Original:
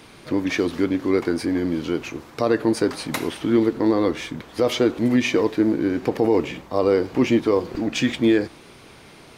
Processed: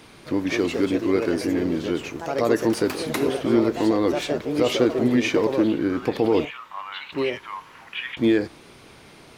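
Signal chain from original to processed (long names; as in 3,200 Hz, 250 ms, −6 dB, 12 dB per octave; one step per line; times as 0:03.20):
0:06.45–0:08.17: elliptic band-pass filter 930–3,100 Hz, stop band 40 dB
delay with pitch and tempo change per echo 255 ms, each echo +3 semitones, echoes 2, each echo −6 dB
level −1.5 dB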